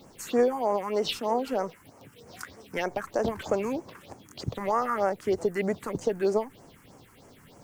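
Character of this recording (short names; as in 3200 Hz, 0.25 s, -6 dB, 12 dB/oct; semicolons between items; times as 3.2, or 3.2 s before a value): a quantiser's noise floor 10-bit, dither none; phasing stages 4, 3.2 Hz, lowest notch 580–3700 Hz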